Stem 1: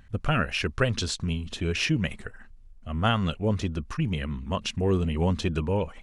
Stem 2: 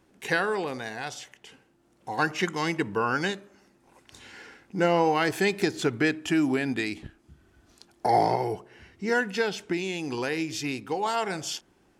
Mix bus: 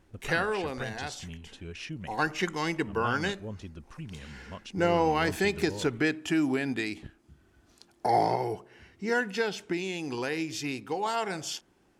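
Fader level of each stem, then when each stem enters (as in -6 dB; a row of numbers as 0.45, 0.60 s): -14.0, -2.5 dB; 0.00, 0.00 s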